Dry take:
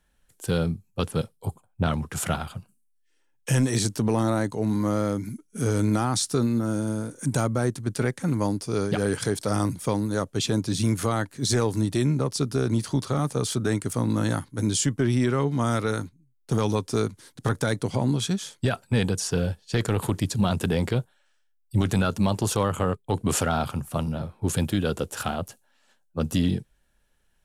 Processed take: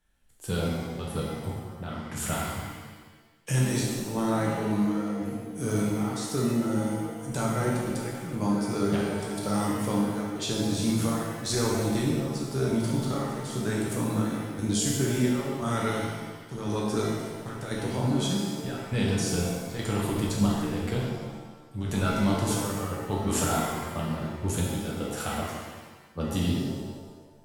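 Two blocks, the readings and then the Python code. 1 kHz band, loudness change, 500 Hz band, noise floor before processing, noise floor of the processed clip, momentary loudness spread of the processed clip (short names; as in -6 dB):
-2.0 dB, -3.0 dB, -3.0 dB, -67 dBFS, -51 dBFS, 10 LU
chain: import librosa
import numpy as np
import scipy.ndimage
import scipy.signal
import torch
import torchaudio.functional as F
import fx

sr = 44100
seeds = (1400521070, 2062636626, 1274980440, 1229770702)

y = fx.chopper(x, sr, hz=0.96, depth_pct=60, duty_pct=65)
y = fx.rev_shimmer(y, sr, seeds[0], rt60_s=1.3, semitones=7, shimmer_db=-8, drr_db=-4.0)
y = y * 10.0 ** (-7.0 / 20.0)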